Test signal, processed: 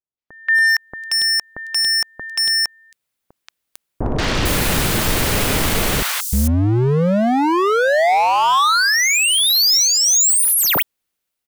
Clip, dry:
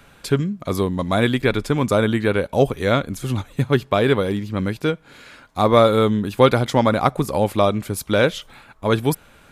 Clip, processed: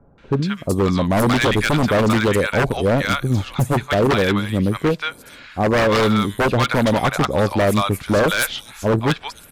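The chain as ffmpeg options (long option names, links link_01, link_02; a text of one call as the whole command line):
ffmpeg -i in.wav -filter_complex "[0:a]acrossover=split=890|5900[link_01][link_02][link_03];[link_02]adelay=180[link_04];[link_03]adelay=450[link_05];[link_01][link_04][link_05]amix=inputs=3:normalize=0,dynaudnorm=framelen=150:gausssize=9:maxgain=14.5dB,aeval=exprs='0.299*(abs(mod(val(0)/0.299+3,4)-2)-1)':channel_layout=same" out.wav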